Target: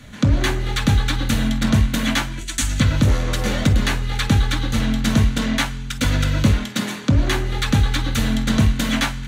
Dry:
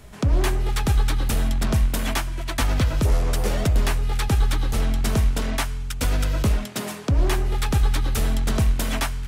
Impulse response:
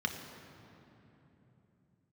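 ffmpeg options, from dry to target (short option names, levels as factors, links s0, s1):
-filter_complex "[0:a]asplit=3[s0][s1][s2];[s0]afade=t=out:st=2.38:d=0.02[s3];[s1]equalizer=f=125:t=o:w=1:g=-10,equalizer=f=250:t=o:w=1:g=-4,equalizer=f=500:t=o:w=1:g=-11,equalizer=f=1000:t=o:w=1:g=-11,equalizer=f=2000:t=o:w=1:g=-4,equalizer=f=4000:t=o:w=1:g=-5,equalizer=f=8000:t=o:w=1:g=12,afade=t=in:st=2.38:d=0.02,afade=t=out:st=2.79:d=0.02[s4];[s2]afade=t=in:st=2.79:d=0.02[s5];[s3][s4][s5]amix=inputs=3:normalize=0[s6];[1:a]atrim=start_sample=2205,atrim=end_sample=3528,asetrate=52920,aresample=44100[s7];[s6][s7]afir=irnorm=-1:irlink=0,volume=1.41"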